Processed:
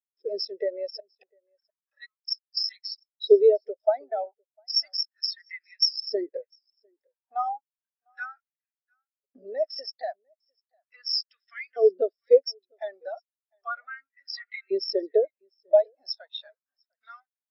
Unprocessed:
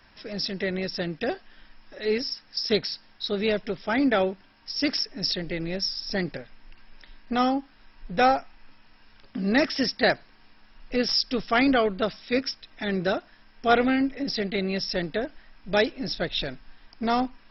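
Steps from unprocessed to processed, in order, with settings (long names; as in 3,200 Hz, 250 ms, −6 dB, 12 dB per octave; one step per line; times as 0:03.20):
0:00.97–0:02.28: gate with flip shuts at −22 dBFS, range −25 dB
in parallel at +2 dB: brickwall limiter −19 dBFS, peak gain reduction 11.5 dB
on the sum: downward compressor 16 to 1, threshold −23 dBFS, peak gain reduction 12.5 dB
dead-zone distortion −43 dBFS
auto-filter high-pass saw up 0.34 Hz 340–2,100 Hz
parametric band 5,300 Hz +5.5 dB 0.59 octaves
on a send: single-tap delay 701 ms −15 dB
on the sum: every bin expanded away from the loudest bin 2.5 to 1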